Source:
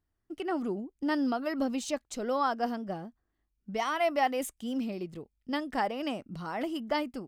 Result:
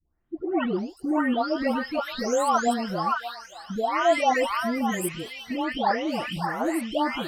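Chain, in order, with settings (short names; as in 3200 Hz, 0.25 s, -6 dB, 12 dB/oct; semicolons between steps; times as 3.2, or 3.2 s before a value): spectral delay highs late, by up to 0.595 s; delay with a stepping band-pass 0.575 s, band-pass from 1300 Hz, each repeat 1.4 oct, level -1 dB; gain +8 dB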